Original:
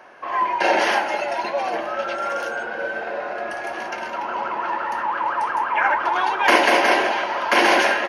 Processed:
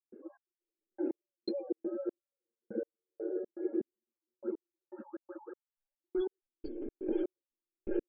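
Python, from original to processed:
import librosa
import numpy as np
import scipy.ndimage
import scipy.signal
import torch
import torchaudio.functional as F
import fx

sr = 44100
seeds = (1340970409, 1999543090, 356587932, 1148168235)

y = fx.tracing_dist(x, sr, depth_ms=0.082)
y = fx.spec_gate(y, sr, threshold_db=-15, keep='strong')
y = scipy.signal.sosfilt(scipy.signal.cheby2(4, 40, [650.0, 3000.0], 'bandstop', fs=sr, output='sos'), y)
y = fx.over_compress(y, sr, threshold_db=-39.0, ratio=-1.0)
y = fx.step_gate(y, sr, bpm=122, pattern='.xx.....x...xx', floor_db=-60.0, edge_ms=4.5)
y = y * 10.0 ** (4.5 / 20.0)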